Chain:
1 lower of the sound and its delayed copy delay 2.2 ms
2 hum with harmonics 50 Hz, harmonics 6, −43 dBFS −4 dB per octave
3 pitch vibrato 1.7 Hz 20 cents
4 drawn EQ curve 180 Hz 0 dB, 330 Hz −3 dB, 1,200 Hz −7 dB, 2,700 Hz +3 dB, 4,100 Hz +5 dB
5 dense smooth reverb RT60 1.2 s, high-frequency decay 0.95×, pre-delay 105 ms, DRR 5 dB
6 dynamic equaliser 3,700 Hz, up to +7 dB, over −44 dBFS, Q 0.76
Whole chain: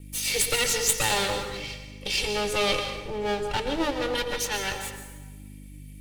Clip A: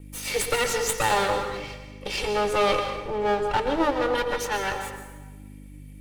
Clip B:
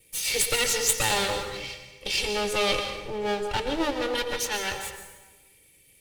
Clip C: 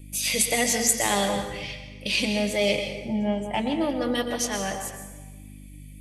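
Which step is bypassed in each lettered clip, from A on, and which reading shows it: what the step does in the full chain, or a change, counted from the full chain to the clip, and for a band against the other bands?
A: 4, change in crest factor −1.5 dB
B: 2, 125 Hz band −3.0 dB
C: 1, 250 Hz band +7.0 dB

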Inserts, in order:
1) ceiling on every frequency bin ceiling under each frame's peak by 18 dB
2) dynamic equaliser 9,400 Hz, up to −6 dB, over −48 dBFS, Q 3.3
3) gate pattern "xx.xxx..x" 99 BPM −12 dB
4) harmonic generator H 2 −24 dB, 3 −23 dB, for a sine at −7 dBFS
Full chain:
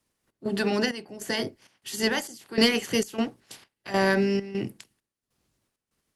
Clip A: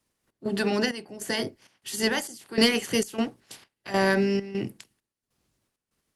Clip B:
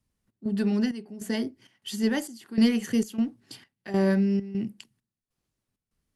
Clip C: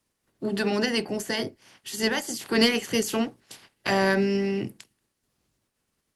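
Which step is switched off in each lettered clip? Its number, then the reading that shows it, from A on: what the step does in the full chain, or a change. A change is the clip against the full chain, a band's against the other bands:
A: 2, 8 kHz band +1.5 dB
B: 1, 250 Hz band +11.0 dB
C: 3, 8 kHz band +1.5 dB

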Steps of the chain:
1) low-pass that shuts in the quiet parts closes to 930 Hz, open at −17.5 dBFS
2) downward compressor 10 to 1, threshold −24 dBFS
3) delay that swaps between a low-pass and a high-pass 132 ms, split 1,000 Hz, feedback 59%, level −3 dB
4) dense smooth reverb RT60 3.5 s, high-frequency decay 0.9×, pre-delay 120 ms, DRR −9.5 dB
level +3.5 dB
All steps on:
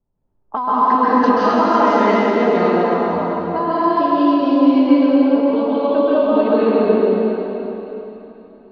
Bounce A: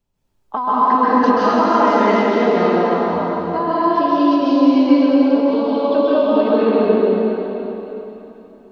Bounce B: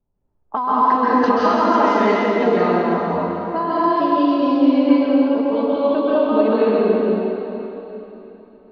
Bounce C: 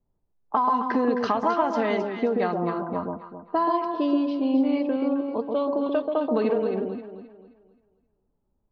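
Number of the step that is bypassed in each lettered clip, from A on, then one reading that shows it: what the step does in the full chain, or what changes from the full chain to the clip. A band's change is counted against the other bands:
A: 1, 4 kHz band +2.0 dB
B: 3, change in momentary loudness spread −1 LU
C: 4, echo-to-direct ratio 11.0 dB to −5.0 dB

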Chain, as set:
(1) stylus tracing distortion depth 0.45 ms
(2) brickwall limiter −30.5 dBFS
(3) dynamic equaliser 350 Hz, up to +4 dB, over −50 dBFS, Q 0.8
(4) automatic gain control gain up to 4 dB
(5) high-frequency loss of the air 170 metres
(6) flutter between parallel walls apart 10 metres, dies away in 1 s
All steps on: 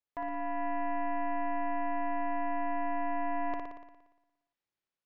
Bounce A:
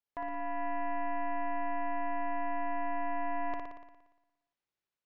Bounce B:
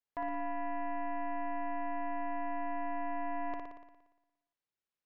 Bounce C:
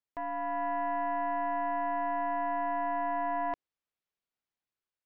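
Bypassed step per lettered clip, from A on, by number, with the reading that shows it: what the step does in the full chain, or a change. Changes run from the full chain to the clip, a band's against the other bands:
3, 250 Hz band −2.5 dB
4, change in momentary loudness spread −2 LU
6, 250 Hz band −5.0 dB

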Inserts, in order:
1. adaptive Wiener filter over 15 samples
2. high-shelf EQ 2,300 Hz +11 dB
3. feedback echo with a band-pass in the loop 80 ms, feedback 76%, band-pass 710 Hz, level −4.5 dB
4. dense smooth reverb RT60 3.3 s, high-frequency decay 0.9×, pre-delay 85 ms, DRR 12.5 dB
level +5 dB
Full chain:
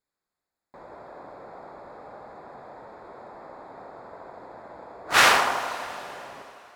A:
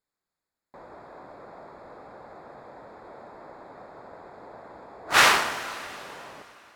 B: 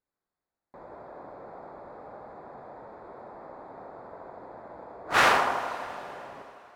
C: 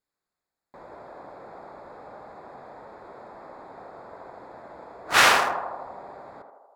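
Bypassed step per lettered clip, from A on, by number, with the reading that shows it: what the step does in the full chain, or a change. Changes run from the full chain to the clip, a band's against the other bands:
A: 3, 500 Hz band −2.0 dB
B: 2, 8 kHz band −8.5 dB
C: 4, change in momentary loudness spread −2 LU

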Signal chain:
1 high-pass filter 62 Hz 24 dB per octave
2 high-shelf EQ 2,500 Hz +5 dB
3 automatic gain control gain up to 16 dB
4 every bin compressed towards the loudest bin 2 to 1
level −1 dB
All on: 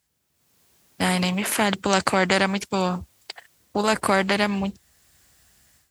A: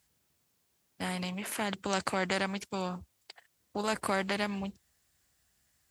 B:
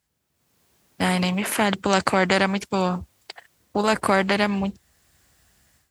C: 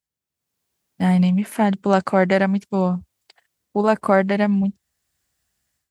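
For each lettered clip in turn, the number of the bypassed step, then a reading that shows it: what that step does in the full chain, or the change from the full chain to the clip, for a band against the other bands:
3, change in momentary loudness spread −4 LU
2, 8 kHz band −3.5 dB
4, 4 kHz band −15.0 dB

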